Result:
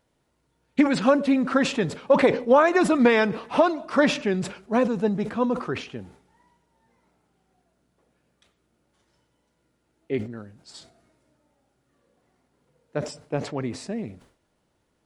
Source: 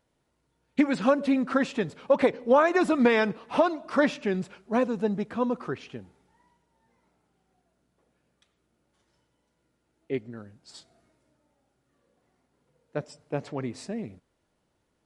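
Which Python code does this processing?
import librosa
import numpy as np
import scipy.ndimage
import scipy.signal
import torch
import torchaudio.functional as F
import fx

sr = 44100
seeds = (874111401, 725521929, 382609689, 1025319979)

y = fx.sustainer(x, sr, db_per_s=120.0)
y = y * librosa.db_to_amplitude(3.0)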